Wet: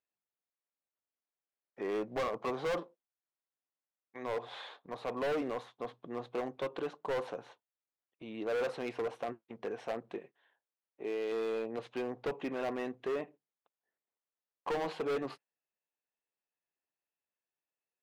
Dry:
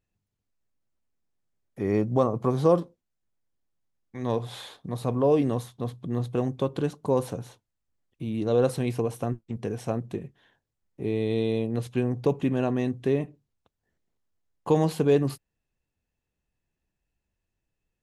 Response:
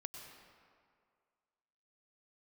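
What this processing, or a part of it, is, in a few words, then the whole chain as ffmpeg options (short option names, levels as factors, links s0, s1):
walkie-talkie: -filter_complex "[0:a]asettb=1/sr,asplit=3[s0][s1][s2];[s0]atrim=end=10.184[s3];[s1]atrim=start=10.18:end=11.32,asetpts=PTS-STARTPTS,afade=t=in:d=0.004:c=qsin,afade=t=out:st=1.136:d=0.004:c=qsin,bass=f=250:g=-7,treble=f=4000:g=2[s4];[s2]atrim=start=11.316[s5];[s3][s4]acrossfade=d=0.004:c1=hsin:c2=qsin[s6];[s6][s5]acrossfade=d=0.004:c1=qsin:c2=hsin,highpass=530,lowpass=2600,asoftclip=type=hard:threshold=0.0299,agate=range=0.447:threshold=0.002:ratio=16:detection=peak"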